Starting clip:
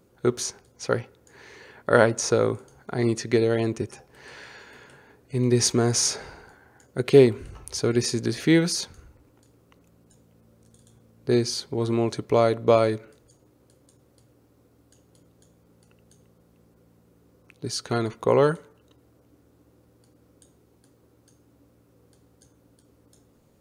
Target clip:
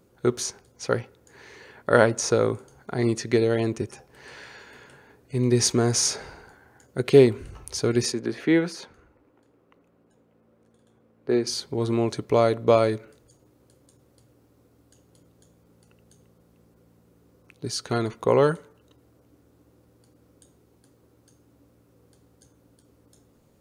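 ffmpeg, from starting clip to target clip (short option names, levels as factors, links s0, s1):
-filter_complex "[0:a]asettb=1/sr,asplit=3[s0][s1][s2];[s0]atrim=end=8.124[s3];[s1]atrim=start=8.12:end=11.47,asetpts=PTS-STARTPTS,afade=t=in:d=0.004:c=qsin,afade=t=out:st=3.346:d=0.004:c=qsin,acrossover=split=210 2800:gain=0.251 1 0.178[s4][s5][s6];[s4][s5][s6]amix=inputs=3:normalize=0[s7];[s2]atrim=start=11.466[s8];[s3][s7]acrossfade=d=0.004:c1=hsin:c2=qsin[s9];[s9][s8]acrossfade=d=0.004:c1=qsin:c2=hsin"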